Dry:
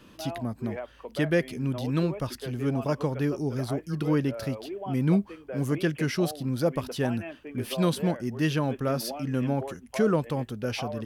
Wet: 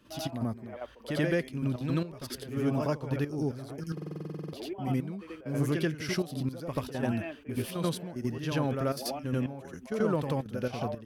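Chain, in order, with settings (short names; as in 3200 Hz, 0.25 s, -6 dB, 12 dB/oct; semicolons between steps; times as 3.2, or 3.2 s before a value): compressor 2.5:1, threshold -26 dBFS, peak gain reduction 6 dB; step gate ".x.x..x.xxx" 111 bpm -12 dB; on a send: reverse echo 85 ms -5 dB; on the sum: stuck buffer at 3.93, samples 2048, times 12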